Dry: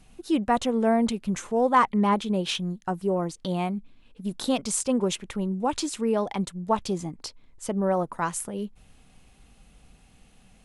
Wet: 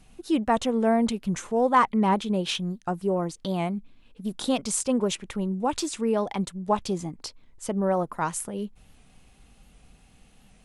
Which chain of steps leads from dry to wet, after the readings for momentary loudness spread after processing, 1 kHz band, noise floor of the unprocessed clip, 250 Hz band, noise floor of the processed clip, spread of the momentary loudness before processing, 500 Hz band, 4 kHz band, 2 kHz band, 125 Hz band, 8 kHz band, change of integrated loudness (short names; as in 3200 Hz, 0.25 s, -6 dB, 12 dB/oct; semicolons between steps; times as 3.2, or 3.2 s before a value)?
12 LU, 0.0 dB, -57 dBFS, 0.0 dB, -57 dBFS, 12 LU, 0.0 dB, 0.0 dB, 0.0 dB, 0.0 dB, 0.0 dB, 0.0 dB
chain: record warp 78 rpm, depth 100 cents